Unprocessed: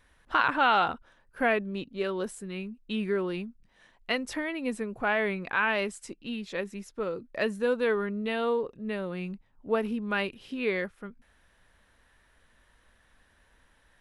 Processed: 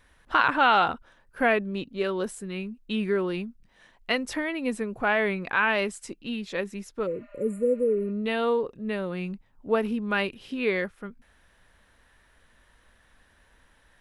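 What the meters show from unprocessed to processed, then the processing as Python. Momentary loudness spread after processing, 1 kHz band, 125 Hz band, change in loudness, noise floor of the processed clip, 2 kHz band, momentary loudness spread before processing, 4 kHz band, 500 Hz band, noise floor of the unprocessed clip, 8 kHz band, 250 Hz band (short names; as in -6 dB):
12 LU, +3.0 dB, +3.0 dB, +3.0 dB, -62 dBFS, +2.5 dB, 12 LU, +3.0 dB, +3.0 dB, -65 dBFS, +3.0 dB, +3.0 dB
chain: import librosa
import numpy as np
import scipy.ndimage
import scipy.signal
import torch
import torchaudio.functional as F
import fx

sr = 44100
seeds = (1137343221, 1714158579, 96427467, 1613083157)

y = fx.spec_repair(x, sr, seeds[0], start_s=7.09, length_s=0.98, low_hz=590.0, high_hz=7000.0, source='after')
y = F.gain(torch.from_numpy(y), 3.0).numpy()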